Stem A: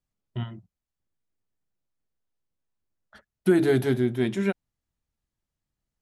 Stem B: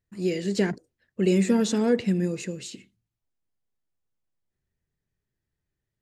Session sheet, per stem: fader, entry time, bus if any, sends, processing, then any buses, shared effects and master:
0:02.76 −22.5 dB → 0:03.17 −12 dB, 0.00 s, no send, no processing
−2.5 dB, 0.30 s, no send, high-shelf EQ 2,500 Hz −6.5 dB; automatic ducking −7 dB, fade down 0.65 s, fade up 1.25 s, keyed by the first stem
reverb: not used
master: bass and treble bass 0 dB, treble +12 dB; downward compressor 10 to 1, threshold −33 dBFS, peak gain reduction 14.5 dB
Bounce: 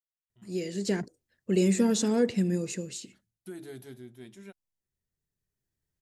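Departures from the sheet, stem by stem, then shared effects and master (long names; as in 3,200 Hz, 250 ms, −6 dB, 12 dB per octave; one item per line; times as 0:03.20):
stem A −22.5 dB → −33.0 dB
master: missing downward compressor 10 to 1, threshold −33 dBFS, peak gain reduction 14.5 dB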